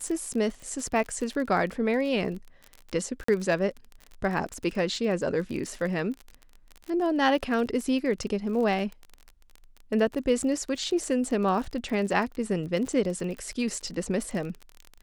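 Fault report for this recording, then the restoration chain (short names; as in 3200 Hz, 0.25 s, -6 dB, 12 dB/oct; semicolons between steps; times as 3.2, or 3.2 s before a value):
crackle 35/s -33 dBFS
3.24–3.28 gap 44 ms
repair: de-click; interpolate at 3.24, 44 ms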